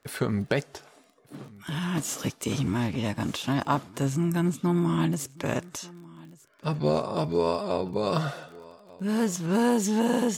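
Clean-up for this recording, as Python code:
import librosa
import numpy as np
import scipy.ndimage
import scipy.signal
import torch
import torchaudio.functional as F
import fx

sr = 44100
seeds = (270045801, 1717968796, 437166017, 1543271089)

y = fx.fix_declick_ar(x, sr, threshold=6.5)
y = fx.fix_echo_inverse(y, sr, delay_ms=1191, level_db=-22.0)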